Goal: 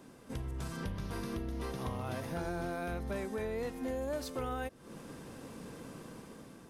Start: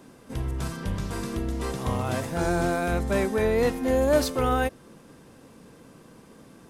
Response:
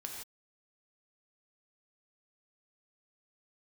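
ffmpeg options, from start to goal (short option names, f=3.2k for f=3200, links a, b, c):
-filter_complex "[0:a]dynaudnorm=f=230:g=7:m=8dB,asettb=1/sr,asplit=3[a][b][c];[a]atrim=end=0.854[d];[b]atrim=start=0.85:end=3.16,asetpts=PTS-STARTPTS,afade=t=in:d=0.004:c=qsin,afade=t=out:st=2.306:d=0.004:c=qsin,equalizer=f=7.6k:w=4.6:g=-14[e];[c]atrim=start=3.156[f];[d][e]acrossfade=d=0.004:c1=hsin:c2=qsin[g];[g][f]acrossfade=d=0.004:c1=qsin:c2=hsin,acompressor=threshold=-31dB:ratio=6,volume=-5dB"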